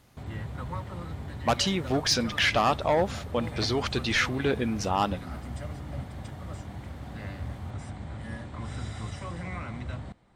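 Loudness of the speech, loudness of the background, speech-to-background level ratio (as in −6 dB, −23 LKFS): −27.0 LKFS, −38.5 LKFS, 11.5 dB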